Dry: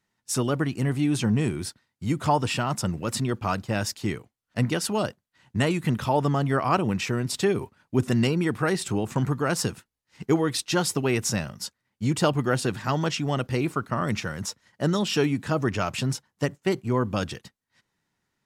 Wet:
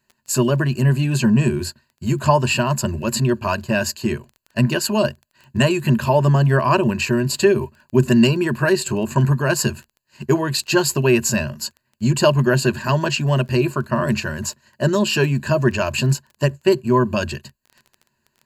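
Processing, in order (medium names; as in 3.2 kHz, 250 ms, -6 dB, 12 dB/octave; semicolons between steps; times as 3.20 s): rippled EQ curve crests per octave 1.4, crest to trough 15 dB; crackle 14 per s -37 dBFS; trim +4 dB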